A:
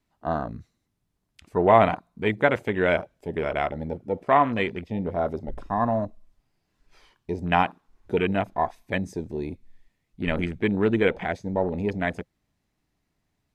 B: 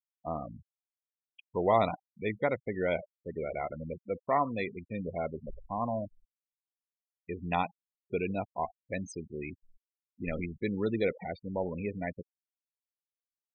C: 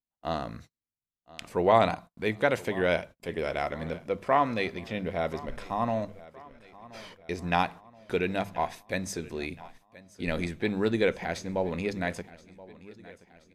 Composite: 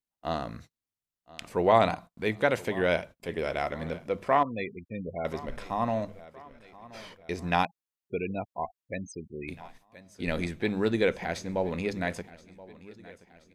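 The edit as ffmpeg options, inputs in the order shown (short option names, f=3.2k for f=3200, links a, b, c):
-filter_complex "[1:a]asplit=2[a][b];[2:a]asplit=3[c][d][e];[c]atrim=end=4.432[f];[a]atrim=start=4.428:end=5.252[g];[d]atrim=start=5.248:end=7.652[h];[b]atrim=start=7.648:end=9.482[i];[e]atrim=start=9.478[j];[f][g]acrossfade=d=0.004:c1=hsin:c2=hsin[k];[k][h]acrossfade=d=0.004:c1=hsin:c2=hsin[l];[l][i]acrossfade=d=0.004:c1=hsin:c2=hsin[m];[m][j]acrossfade=d=0.004:c1=hsin:c2=hsin"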